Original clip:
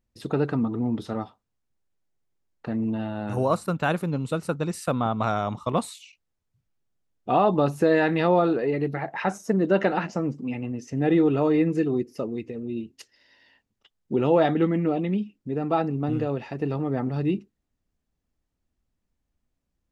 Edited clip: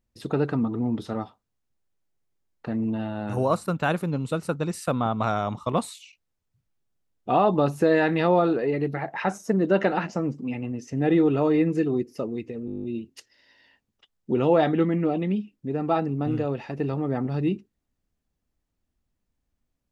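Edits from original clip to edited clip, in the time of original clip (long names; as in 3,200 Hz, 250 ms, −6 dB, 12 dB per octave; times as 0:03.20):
0:12.66: stutter 0.02 s, 10 plays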